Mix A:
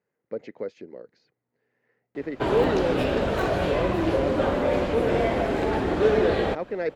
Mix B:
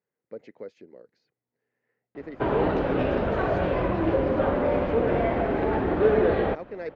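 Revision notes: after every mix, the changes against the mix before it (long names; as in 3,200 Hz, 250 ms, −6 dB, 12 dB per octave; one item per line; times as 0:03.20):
speech −7.0 dB
background: add low-pass filter 2,100 Hz 12 dB per octave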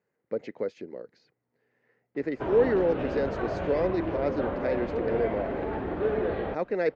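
speech +8.5 dB
background −7.0 dB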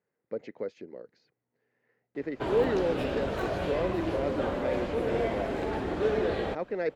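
speech −4.0 dB
background: remove low-pass filter 2,100 Hz 12 dB per octave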